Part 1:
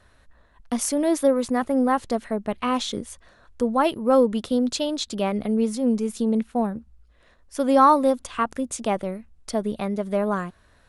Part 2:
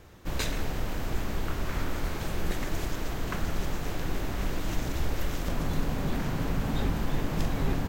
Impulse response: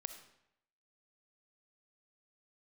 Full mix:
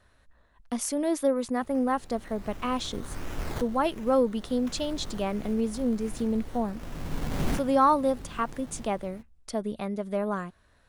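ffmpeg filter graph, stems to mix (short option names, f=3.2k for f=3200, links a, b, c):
-filter_complex "[0:a]volume=-5.5dB,asplit=2[a][b];[1:a]dynaudnorm=f=160:g=11:m=14.5dB,acrusher=samples=14:mix=1:aa=0.000001:lfo=1:lforange=8.4:lforate=1.4,adelay=1350,volume=-7.5dB[c];[b]apad=whole_len=407061[d];[c][d]sidechaincompress=threshold=-46dB:ratio=4:attack=24:release=664[e];[a][e]amix=inputs=2:normalize=0"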